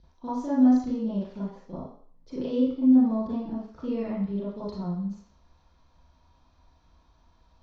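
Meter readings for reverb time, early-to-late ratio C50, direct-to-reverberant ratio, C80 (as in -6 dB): 0.55 s, 1.0 dB, -11.0 dB, 5.5 dB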